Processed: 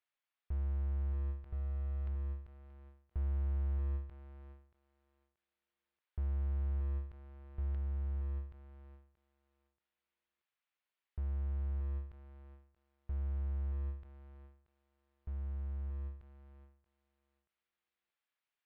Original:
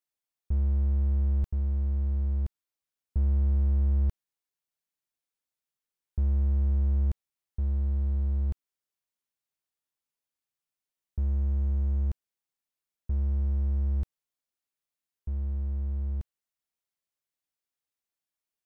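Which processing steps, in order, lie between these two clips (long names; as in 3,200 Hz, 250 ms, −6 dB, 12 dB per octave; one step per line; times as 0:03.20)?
tilt shelving filter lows −10 dB, about 720 Hz
in parallel at −3.5 dB: soft clipping −38.5 dBFS, distortion −10 dB
on the sum: high-frequency loss of the air 450 metres
feedback echo with a high-pass in the loop 630 ms, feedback 16%, high-pass 250 Hz, level −7 dB
every ending faded ahead of time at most 110 dB per second
level −2.5 dB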